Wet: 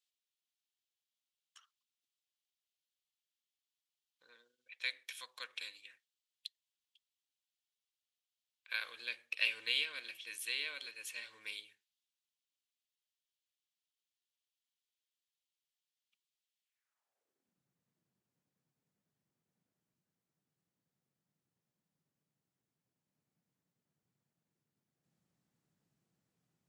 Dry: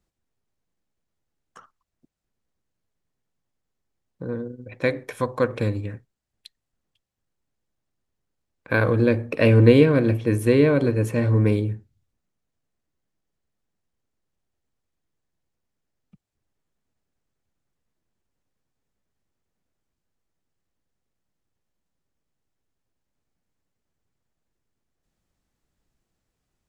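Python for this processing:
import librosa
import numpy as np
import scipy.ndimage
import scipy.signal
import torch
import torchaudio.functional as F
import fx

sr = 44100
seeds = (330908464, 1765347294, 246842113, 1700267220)

y = fx.filter_sweep_highpass(x, sr, from_hz=3200.0, to_hz=150.0, start_s=16.62, end_s=17.61, q=2.5)
y = F.gain(torch.from_numpy(y), -6.5).numpy()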